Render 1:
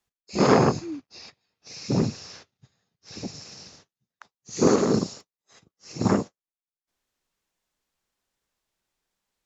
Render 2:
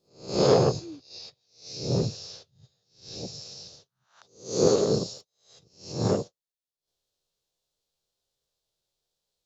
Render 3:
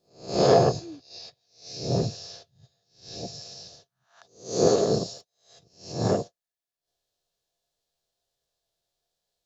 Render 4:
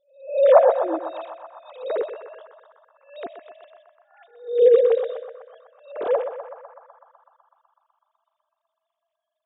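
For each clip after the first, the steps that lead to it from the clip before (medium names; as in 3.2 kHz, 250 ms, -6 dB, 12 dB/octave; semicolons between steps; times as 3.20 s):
reverse spectral sustain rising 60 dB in 0.42 s; ten-band graphic EQ 125 Hz +5 dB, 250 Hz -9 dB, 500 Hz +8 dB, 1 kHz -5 dB, 2 kHz -11 dB, 4 kHz +9 dB; trim -4.5 dB
small resonant body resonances 690/1700 Hz, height 11 dB, ringing for 45 ms
formants replaced by sine waves; time-frequency box 0.93–1.26 s, 240–2600 Hz +10 dB; band-passed feedback delay 125 ms, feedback 80%, band-pass 1.1 kHz, level -7 dB; trim +4.5 dB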